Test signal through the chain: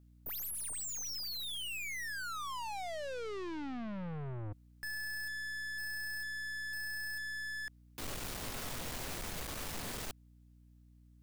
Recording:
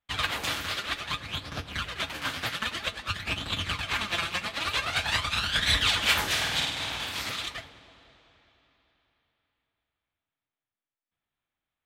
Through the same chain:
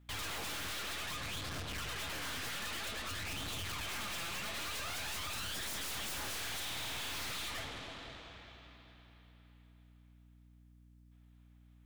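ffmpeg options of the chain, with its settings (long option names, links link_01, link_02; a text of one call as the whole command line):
ffmpeg -i in.wav -af "aeval=exprs='0.0447*(abs(mod(val(0)/0.0447+3,4)-2)-1)':channel_layout=same,aeval=exprs='(tanh(355*val(0)+0.45)-tanh(0.45))/355':channel_layout=same,aeval=exprs='val(0)+0.000316*(sin(2*PI*60*n/s)+sin(2*PI*2*60*n/s)/2+sin(2*PI*3*60*n/s)/3+sin(2*PI*4*60*n/s)/4+sin(2*PI*5*60*n/s)/5)':channel_layout=same,volume=10.5dB" out.wav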